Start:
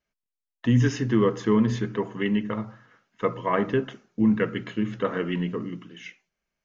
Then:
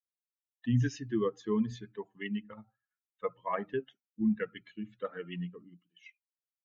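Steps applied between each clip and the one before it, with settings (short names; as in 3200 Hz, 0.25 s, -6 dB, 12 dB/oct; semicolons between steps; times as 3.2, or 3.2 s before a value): per-bin expansion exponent 2; gain -6 dB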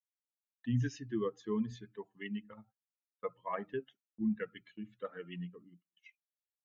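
gate -59 dBFS, range -22 dB; gain -4.5 dB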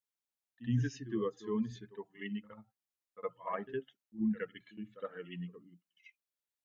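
pre-echo 64 ms -14 dB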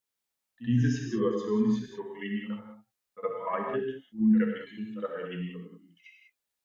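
non-linear reverb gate 0.22 s flat, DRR 0.5 dB; gain +5 dB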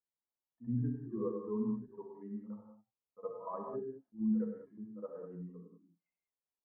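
Chebyshev low-pass 1100 Hz, order 4; gain -9 dB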